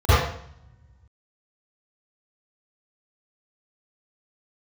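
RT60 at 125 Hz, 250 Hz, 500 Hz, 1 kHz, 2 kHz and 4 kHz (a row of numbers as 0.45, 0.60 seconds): 1.9, 1.4, 0.60, 0.65, 0.65, 0.60 seconds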